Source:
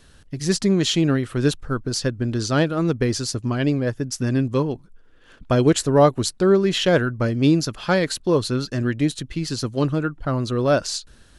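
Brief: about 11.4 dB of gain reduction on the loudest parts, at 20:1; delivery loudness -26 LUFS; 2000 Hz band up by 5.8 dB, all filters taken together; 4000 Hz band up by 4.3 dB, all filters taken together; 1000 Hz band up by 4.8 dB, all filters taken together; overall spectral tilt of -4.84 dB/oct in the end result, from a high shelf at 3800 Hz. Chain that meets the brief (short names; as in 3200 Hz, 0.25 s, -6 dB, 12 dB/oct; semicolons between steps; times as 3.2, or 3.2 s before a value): bell 1000 Hz +5 dB; bell 2000 Hz +5.5 dB; high shelf 3800 Hz -4 dB; bell 4000 Hz +6 dB; compressor 20:1, threshold -18 dBFS; gain -2 dB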